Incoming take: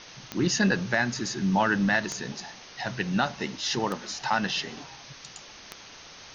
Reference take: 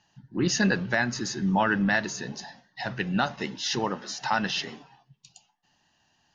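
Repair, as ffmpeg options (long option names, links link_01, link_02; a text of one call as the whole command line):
ffmpeg -i in.wav -af "adeclick=threshold=4,afwtdn=0.0079,asetnsamples=nb_out_samples=441:pad=0,asendcmd='4.77 volume volume -6.5dB',volume=0dB" out.wav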